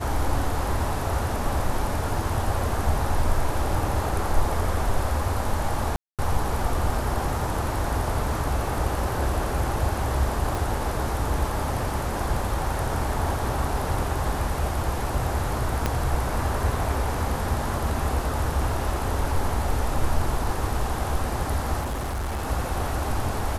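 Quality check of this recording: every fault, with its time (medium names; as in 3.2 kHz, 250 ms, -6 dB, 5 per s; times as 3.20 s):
5.96–6.19 s: dropout 227 ms
10.55 s: pop
15.86 s: pop -9 dBFS
21.80–22.48 s: clipped -25 dBFS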